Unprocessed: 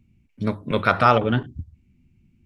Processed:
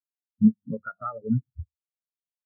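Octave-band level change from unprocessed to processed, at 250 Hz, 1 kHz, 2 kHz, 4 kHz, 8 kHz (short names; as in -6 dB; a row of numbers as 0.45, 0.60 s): +2.5 dB, -17.5 dB, -18.5 dB, under -40 dB, n/a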